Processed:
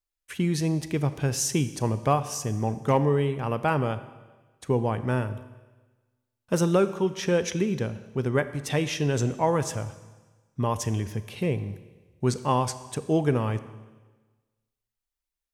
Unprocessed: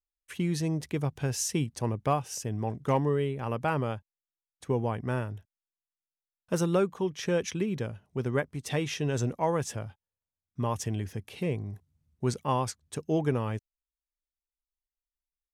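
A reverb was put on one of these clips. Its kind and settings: Schroeder reverb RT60 1.3 s, combs from 28 ms, DRR 12.5 dB; gain +4 dB

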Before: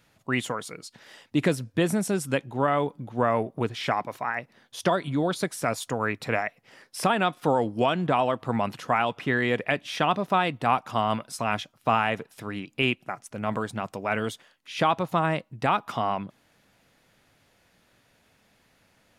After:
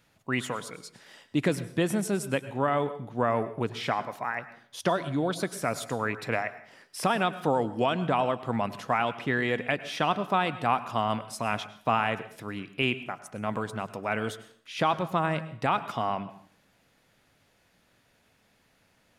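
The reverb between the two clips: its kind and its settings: plate-style reverb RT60 0.55 s, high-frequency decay 0.85×, pre-delay 90 ms, DRR 14 dB; gain -2.5 dB

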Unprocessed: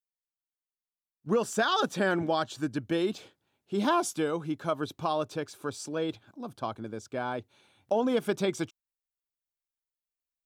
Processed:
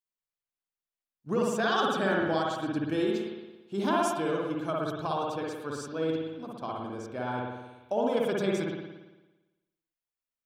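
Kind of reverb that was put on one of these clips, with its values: spring tank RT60 1.1 s, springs 56 ms, chirp 75 ms, DRR -2.5 dB; gain -4 dB

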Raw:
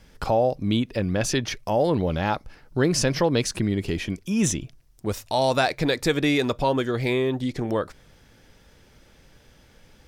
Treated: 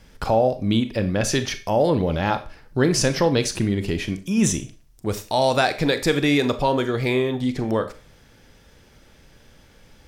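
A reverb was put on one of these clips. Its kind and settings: Schroeder reverb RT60 0.35 s, combs from 28 ms, DRR 10 dB; gain +2 dB

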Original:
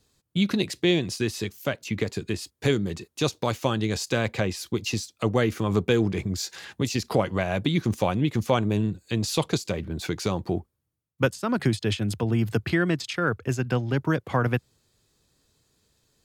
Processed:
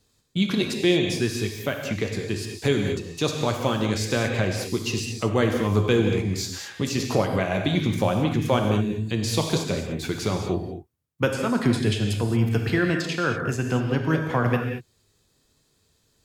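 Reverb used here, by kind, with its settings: non-linear reverb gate 0.25 s flat, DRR 2.5 dB

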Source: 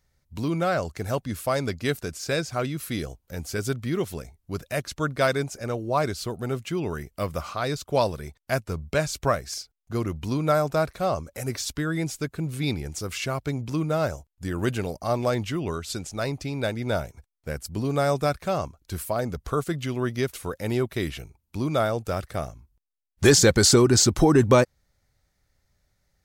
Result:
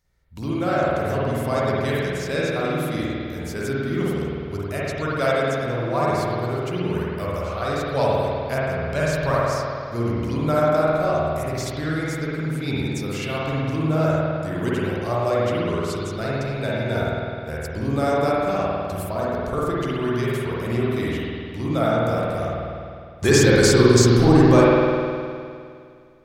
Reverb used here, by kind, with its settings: spring tank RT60 2.3 s, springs 51 ms, chirp 65 ms, DRR -7 dB; gain -3.5 dB

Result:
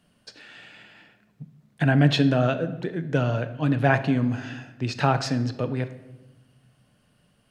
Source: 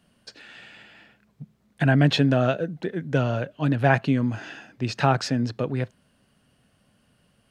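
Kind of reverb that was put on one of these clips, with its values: shoebox room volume 460 m³, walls mixed, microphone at 0.42 m; gain -1 dB

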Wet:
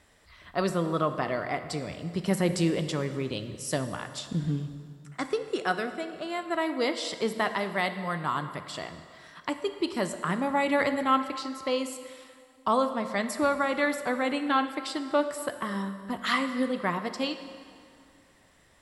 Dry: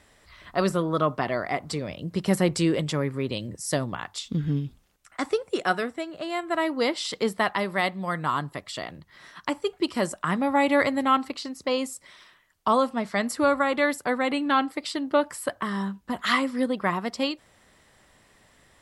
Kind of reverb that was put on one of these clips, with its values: plate-style reverb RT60 2.2 s, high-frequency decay 0.8×, DRR 8.5 dB; gain -3.5 dB

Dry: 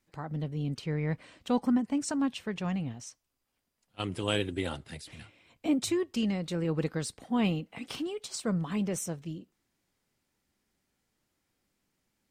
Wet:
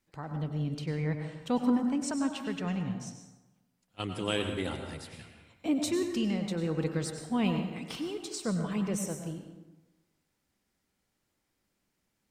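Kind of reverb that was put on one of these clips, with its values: plate-style reverb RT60 1.1 s, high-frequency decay 0.6×, pre-delay 85 ms, DRR 5 dB; gain -1.5 dB

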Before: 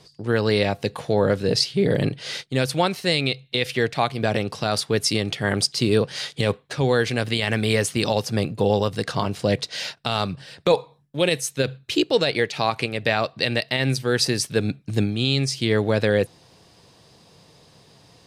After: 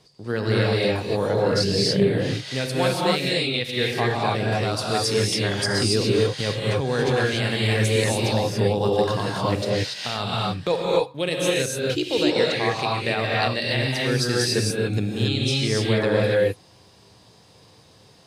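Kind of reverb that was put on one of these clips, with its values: non-linear reverb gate 0.31 s rising, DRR -4.5 dB; gain -5.5 dB

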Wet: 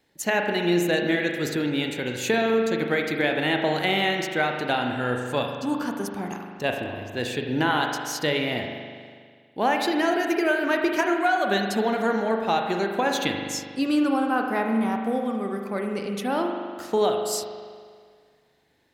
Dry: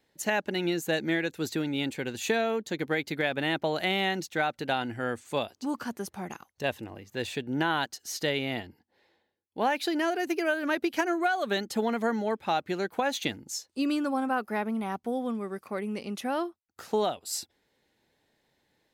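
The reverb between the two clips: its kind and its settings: spring tank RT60 1.9 s, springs 40 ms, chirp 40 ms, DRR 2.5 dB; gain +3.5 dB

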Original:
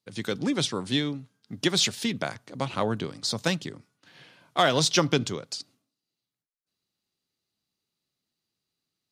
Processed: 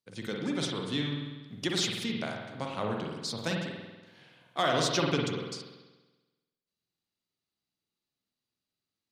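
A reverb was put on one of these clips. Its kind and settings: spring tank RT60 1.2 s, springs 48 ms, chirp 20 ms, DRR 0 dB; gain -7.5 dB

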